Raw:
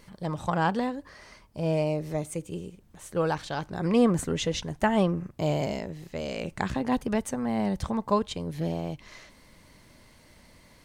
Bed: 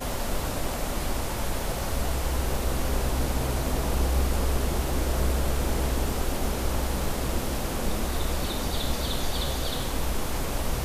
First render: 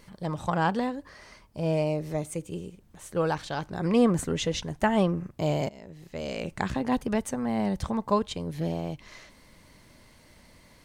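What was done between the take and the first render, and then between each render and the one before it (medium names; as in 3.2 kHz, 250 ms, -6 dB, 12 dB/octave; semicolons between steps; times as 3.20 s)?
5.69–6.29 s: fade in, from -22.5 dB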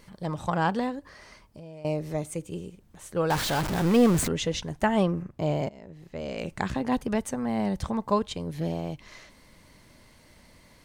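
0.99–1.85 s: compression, threshold -41 dBFS; 3.30–4.28 s: jump at every zero crossing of -25 dBFS; 5.23–6.38 s: treble shelf 3.3 kHz -8.5 dB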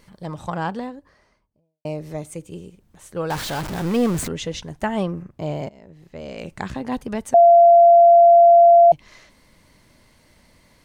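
0.45–1.85 s: studio fade out; 7.34–8.92 s: bleep 686 Hz -7 dBFS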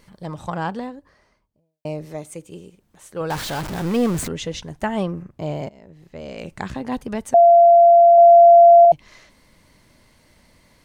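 2.05–3.21 s: bass shelf 150 Hz -9 dB; 8.18–8.85 s: bass shelf 380 Hz +8 dB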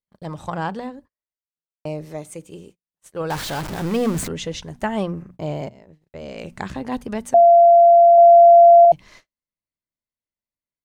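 hum notches 60/120/180/240 Hz; gate -44 dBFS, range -44 dB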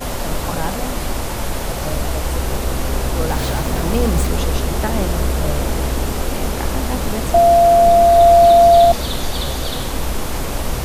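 add bed +6.5 dB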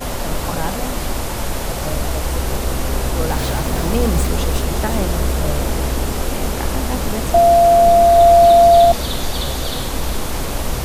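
feedback echo behind a high-pass 361 ms, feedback 61%, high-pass 4 kHz, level -7.5 dB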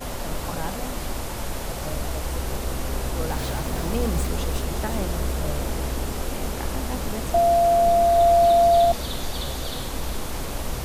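trim -7.5 dB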